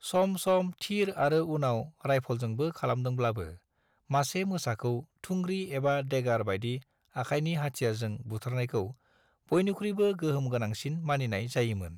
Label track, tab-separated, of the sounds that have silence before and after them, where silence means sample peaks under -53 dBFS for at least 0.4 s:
4.100000	8.940000	sound